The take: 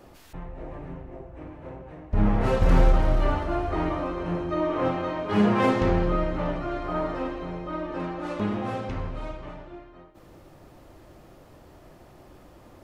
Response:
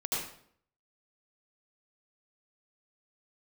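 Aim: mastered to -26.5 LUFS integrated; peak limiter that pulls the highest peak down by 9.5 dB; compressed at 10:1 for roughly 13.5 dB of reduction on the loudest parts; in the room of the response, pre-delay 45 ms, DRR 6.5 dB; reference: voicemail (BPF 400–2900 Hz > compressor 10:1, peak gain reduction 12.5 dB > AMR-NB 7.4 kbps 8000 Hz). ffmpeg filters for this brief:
-filter_complex "[0:a]acompressor=threshold=-27dB:ratio=10,alimiter=level_in=4.5dB:limit=-24dB:level=0:latency=1,volume=-4.5dB,asplit=2[a][b];[1:a]atrim=start_sample=2205,adelay=45[c];[b][c]afir=irnorm=-1:irlink=0,volume=-12dB[d];[a][d]amix=inputs=2:normalize=0,highpass=400,lowpass=2.9k,acompressor=threshold=-44dB:ratio=10,volume=23.5dB" -ar 8000 -c:a libopencore_amrnb -b:a 7400

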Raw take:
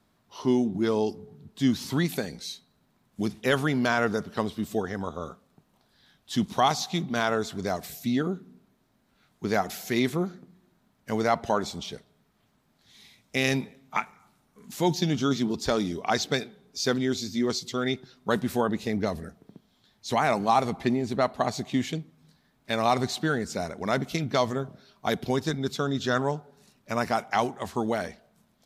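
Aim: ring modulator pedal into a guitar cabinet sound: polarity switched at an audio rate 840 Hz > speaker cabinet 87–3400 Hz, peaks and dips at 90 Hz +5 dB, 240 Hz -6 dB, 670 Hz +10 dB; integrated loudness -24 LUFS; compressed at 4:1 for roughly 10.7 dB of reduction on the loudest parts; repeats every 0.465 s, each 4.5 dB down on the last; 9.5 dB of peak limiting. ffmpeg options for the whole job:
-af "acompressor=threshold=-31dB:ratio=4,alimiter=level_in=0.5dB:limit=-24dB:level=0:latency=1,volume=-0.5dB,aecho=1:1:465|930|1395|1860|2325|2790|3255|3720|4185:0.596|0.357|0.214|0.129|0.0772|0.0463|0.0278|0.0167|0.01,aeval=exprs='val(0)*sgn(sin(2*PI*840*n/s))':c=same,highpass=87,equalizer=f=90:t=q:w=4:g=5,equalizer=f=240:t=q:w=4:g=-6,equalizer=f=670:t=q:w=4:g=10,lowpass=f=3.4k:w=0.5412,lowpass=f=3.4k:w=1.3066,volume=10dB"

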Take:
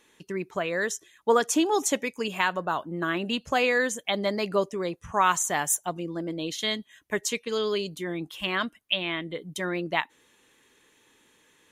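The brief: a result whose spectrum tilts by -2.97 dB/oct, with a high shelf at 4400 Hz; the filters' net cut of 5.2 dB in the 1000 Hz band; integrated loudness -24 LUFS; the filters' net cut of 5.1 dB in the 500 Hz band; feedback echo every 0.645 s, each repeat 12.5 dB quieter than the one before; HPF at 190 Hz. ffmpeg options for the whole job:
-af "highpass=190,equalizer=f=500:t=o:g=-5,equalizer=f=1k:t=o:g=-4.5,highshelf=f=4.4k:g=-9,aecho=1:1:645|1290|1935:0.237|0.0569|0.0137,volume=7.5dB"

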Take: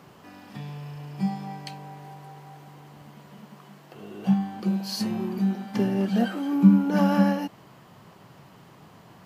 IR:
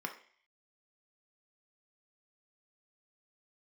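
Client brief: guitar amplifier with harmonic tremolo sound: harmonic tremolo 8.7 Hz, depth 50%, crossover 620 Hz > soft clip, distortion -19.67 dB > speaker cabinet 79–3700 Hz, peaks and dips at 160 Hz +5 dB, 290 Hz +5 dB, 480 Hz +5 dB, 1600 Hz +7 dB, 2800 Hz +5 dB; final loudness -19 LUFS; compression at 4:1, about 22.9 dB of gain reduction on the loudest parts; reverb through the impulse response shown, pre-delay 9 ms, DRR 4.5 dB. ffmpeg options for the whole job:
-filter_complex "[0:a]acompressor=threshold=-39dB:ratio=4,asplit=2[a][b];[1:a]atrim=start_sample=2205,adelay=9[c];[b][c]afir=irnorm=-1:irlink=0,volume=-6.5dB[d];[a][d]amix=inputs=2:normalize=0,acrossover=split=620[e][f];[e]aeval=exprs='val(0)*(1-0.5/2+0.5/2*cos(2*PI*8.7*n/s))':c=same[g];[f]aeval=exprs='val(0)*(1-0.5/2-0.5/2*cos(2*PI*8.7*n/s))':c=same[h];[g][h]amix=inputs=2:normalize=0,asoftclip=threshold=-34.5dB,highpass=79,equalizer=f=160:t=q:w=4:g=5,equalizer=f=290:t=q:w=4:g=5,equalizer=f=480:t=q:w=4:g=5,equalizer=f=1.6k:t=q:w=4:g=7,equalizer=f=2.8k:t=q:w=4:g=5,lowpass=f=3.7k:w=0.5412,lowpass=f=3.7k:w=1.3066,volume=25dB"

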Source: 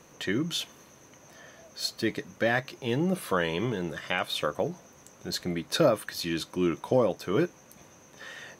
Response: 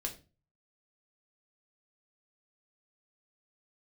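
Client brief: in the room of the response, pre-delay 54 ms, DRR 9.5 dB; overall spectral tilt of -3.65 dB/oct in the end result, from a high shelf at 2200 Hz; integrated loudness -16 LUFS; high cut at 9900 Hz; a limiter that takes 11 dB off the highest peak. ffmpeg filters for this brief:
-filter_complex "[0:a]lowpass=9.9k,highshelf=f=2.2k:g=8,alimiter=limit=-19dB:level=0:latency=1,asplit=2[a][b];[1:a]atrim=start_sample=2205,adelay=54[c];[b][c]afir=irnorm=-1:irlink=0,volume=-10dB[d];[a][d]amix=inputs=2:normalize=0,volume=14.5dB"

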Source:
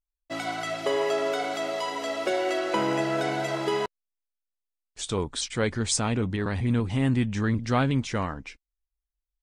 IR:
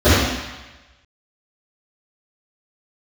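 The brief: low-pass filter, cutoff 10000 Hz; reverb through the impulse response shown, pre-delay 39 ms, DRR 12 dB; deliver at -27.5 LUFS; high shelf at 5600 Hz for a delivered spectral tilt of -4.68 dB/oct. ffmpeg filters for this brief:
-filter_complex "[0:a]lowpass=10k,highshelf=f=5.6k:g=8.5,asplit=2[a][b];[1:a]atrim=start_sample=2205,adelay=39[c];[b][c]afir=irnorm=-1:irlink=0,volume=-40.5dB[d];[a][d]amix=inputs=2:normalize=0,volume=-2dB"

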